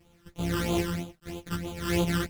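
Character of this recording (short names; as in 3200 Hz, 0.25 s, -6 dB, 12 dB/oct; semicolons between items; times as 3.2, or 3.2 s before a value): a buzz of ramps at a fixed pitch in blocks of 256 samples; phasing stages 12, 3.1 Hz, lowest notch 690–1800 Hz; a quantiser's noise floor 12-bit, dither none; a shimmering, thickened sound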